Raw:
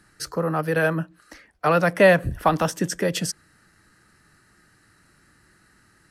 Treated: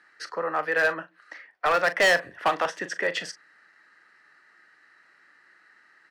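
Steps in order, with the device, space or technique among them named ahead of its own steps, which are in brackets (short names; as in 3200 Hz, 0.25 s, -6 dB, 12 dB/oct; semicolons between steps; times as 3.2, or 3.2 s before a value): megaphone (BPF 590–3600 Hz; bell 1900 Hz +7 dB 0.36 oct; hard clip -16.5 dBFS, distortion -8 dB; doubler 40 ms -13 dB)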